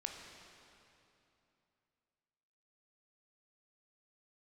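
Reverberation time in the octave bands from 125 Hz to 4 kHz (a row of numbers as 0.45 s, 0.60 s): 3.3 s, 3.2 s, 3.0 s, 2.9 s, 2.6 s, 2.4 s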